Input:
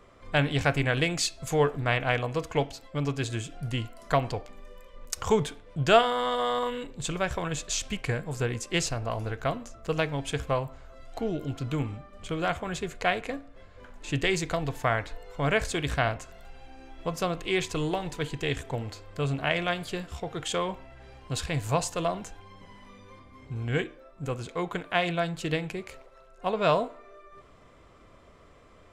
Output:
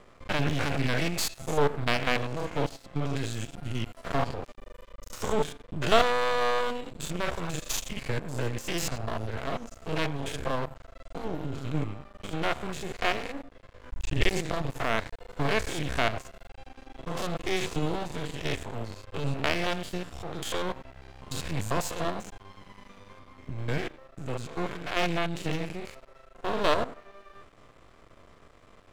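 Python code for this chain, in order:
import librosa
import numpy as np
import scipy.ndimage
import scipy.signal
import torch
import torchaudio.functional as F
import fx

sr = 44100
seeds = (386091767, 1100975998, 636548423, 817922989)

y = fx.spec_steps(x, sr, hold_ms=100)
y = fx.low_shelf_res(y, sr, hz=110.0, db=12.5, q=1.5, at=(13.92, 14.34))
y = np.maximum(y, 0.0)
y = F.gain(torch.from_numpy(y), 5.0).numpy()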